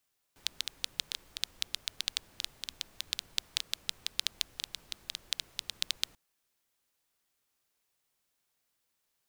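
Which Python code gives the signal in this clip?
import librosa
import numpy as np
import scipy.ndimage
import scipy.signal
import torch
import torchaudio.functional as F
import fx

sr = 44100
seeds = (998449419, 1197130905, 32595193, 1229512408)

y = fx.rain(sr, seeds[0], length_s=5.79, drops_per_s=7.7, hz=3700.0, bed_db=-20)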